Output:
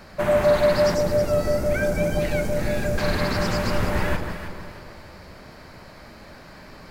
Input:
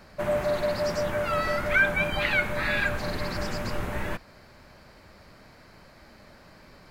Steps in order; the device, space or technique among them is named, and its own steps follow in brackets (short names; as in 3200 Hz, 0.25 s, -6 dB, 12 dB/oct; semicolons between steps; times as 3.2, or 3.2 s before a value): saturated reverb return (on a send at -6 dB: reverb RT60 1.8 s, pre-delay 59 ms + soft clip -30 dBFS, distortion -8 dB); 0.94–2.98 on the sum: band shelf 1900 Hz -15 dB 2.5 oct; echo with dull and thin repeats by turns 0.158 s, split 1200 Hz, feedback 60%, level -5.5 dB; gain +6 dB